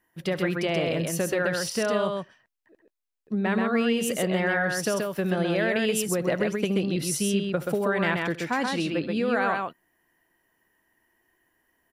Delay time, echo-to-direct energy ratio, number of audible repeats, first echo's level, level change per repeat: 73 ms, -3.5 dB, 2, -18.0 dB, no steady repeat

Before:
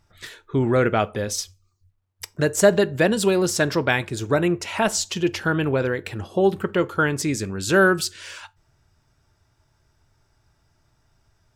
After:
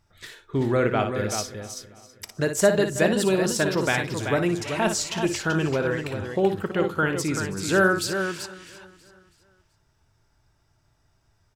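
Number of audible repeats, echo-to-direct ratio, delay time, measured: 7, -4.0 dB, 58 ms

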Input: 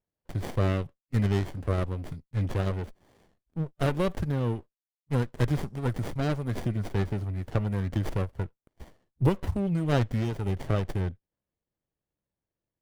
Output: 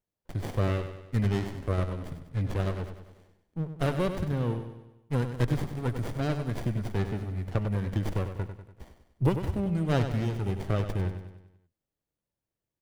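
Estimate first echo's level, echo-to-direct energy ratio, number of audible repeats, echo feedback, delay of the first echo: -9.0 dB, -7.5 dB, 5, 51%, 97 ms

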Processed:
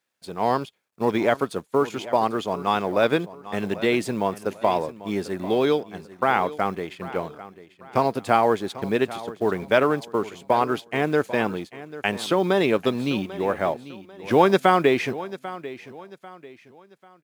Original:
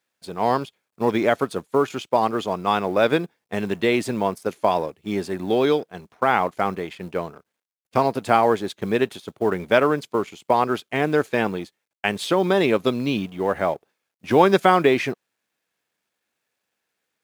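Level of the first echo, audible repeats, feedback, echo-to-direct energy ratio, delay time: -16.0 dB, 3, 35%, -15.5 dB, 0.793 s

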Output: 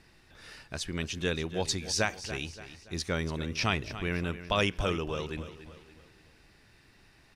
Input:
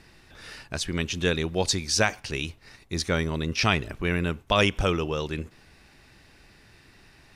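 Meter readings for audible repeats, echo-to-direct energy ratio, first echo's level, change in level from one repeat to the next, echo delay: 4, -12.0 dB, -13.0 dB, -7.5 dB, 0.286 s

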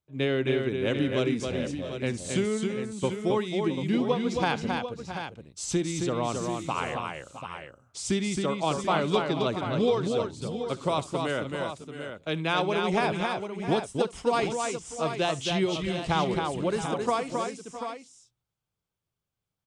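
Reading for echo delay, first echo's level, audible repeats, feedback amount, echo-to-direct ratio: 68 ms, -19.5 dB, 4, no steady repeat, -2.5 dB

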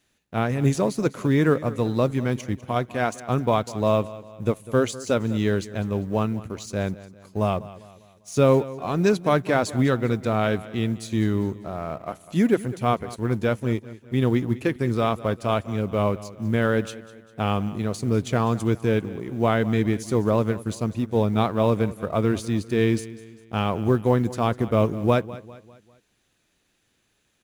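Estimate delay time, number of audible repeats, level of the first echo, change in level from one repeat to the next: 0.199 s, 3, -17.5 dB, -7.0 dB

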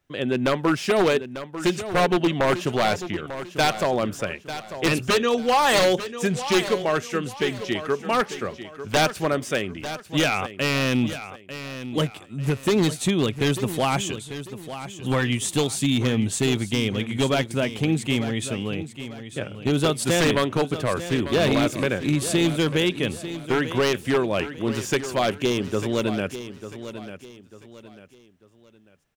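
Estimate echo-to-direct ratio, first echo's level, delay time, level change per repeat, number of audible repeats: -11.5 dB, -12.0 dB, 0.895 s, -9.5 dB, 3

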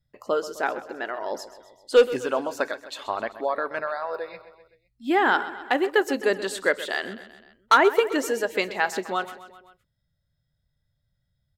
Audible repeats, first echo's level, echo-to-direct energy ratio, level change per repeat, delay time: 4, -15.0 dB, -13.0 dB, -4.5 dB, 0.129 s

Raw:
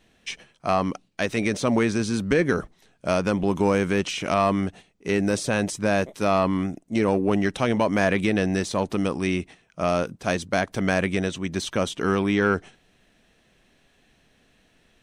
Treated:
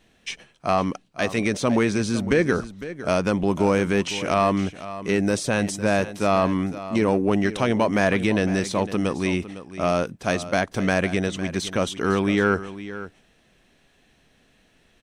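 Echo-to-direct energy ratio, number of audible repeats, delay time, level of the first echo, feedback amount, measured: -14.0 dB, 1, 0.506 s, -14.0 dB, no steady repeat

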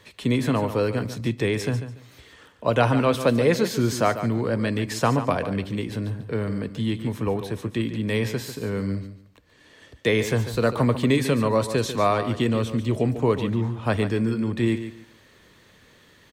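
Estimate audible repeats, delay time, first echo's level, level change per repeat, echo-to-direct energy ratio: 2, 0.144 s, -11.0 dB, -13.0 dB, -11.0 dB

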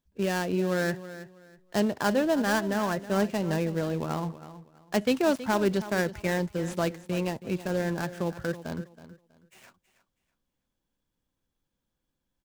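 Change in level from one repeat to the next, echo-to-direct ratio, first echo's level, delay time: -12.5 dB, -14.5 dB, -14.5 dB, 0.323 s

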